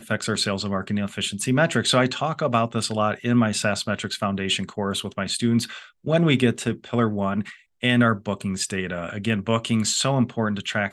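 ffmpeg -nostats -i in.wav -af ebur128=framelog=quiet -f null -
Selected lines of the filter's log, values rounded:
Integrated loudness:
  I:         -23.3 LUFS
  Threshold: -33.3 LUFS
Loudness range:
  LRA:         1.6 LU
  Threshold: -43.3 LUFS
  LRA low:   -24.0 LUFS
  LRA high:  -22.4 LUFS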